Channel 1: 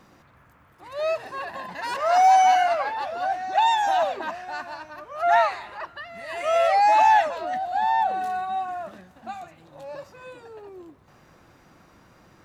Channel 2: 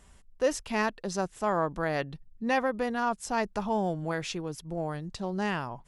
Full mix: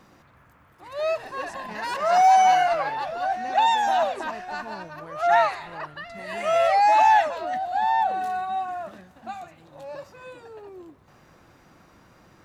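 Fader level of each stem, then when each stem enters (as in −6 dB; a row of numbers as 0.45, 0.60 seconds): 0.0, −12.5 decibels; 0.00, 0.95 seconds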